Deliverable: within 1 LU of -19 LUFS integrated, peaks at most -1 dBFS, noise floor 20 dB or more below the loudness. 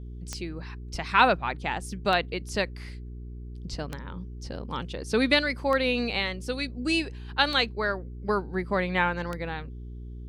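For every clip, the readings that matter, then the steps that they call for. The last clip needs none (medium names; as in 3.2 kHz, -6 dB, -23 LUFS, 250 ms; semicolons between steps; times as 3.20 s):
clicks found 6; hum 60 Hz; highest harmonic 420 Hz; hum level -37 dBFS; loudness -27.5 LUFS; peak level -6.5 dBFS; loudness target -19.0 LUFS
-> de-click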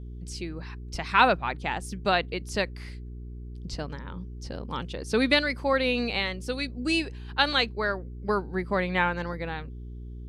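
clicks found 0; hum 60 Hz; highest harmonic 420 Hz; hum level -37 dBFS
-> de-hum 60 Hz, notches 7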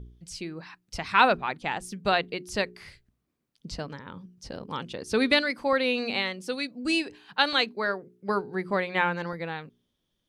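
hum not found; loudness -27.5 LUFS; peak level -6.5 dBFS; loudness target -19.0 LUFS
-> trim +8.5 dB; peak limiter -1 dBFS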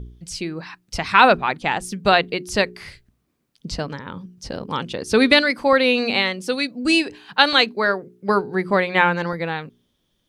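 loudness -19.0 LUFS; peak level -1.0 dBFS; noise floor -70 dBFS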